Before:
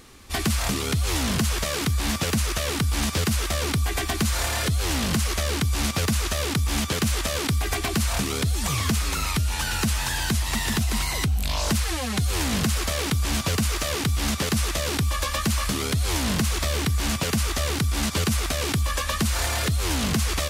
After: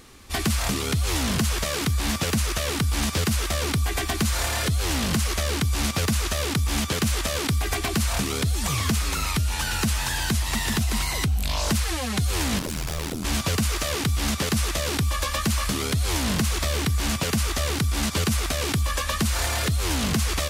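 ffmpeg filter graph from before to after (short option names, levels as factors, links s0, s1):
-filter_complex "[0:a]asettb=1/sr,asplit=3[s0][s1][s2];[s0]atrim=end=12.594[s3];[s1]atrim=start=12.59:end=13.25,asetpts=PTS-STARTPTS,afade=t=in:d=0.004:c=qsin,afade=t=out:st=0.656:d=0.004:c=qsin,lowshelf=f=130:g=8,aeval=exprs='0.1*(abs(mod(val(0)/0.1+3,4)-2)-1)':c=same,tremolo=f=81:d=0.919[s4];[s2]atrim=start=13.246[s5];[s3][s4]acrossfade=d=0.004:c1=hsin:c2=qsin[s6];[s6][s5]acrossfade=d=0.004:c1=qsin:c2=hsin"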